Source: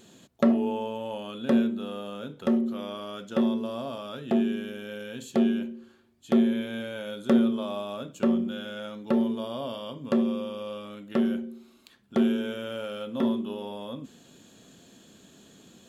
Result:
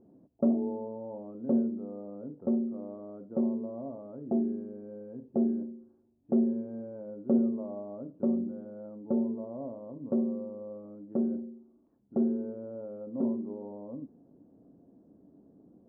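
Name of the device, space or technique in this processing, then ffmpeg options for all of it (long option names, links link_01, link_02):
under water: -af "lowpass=frequency=760:width=0.5412,lowpass=frequency=760:width=1.3066,equalizer=frequency=290:width_type=o:width=0.23:gain=9.5,volume=-5.5dB"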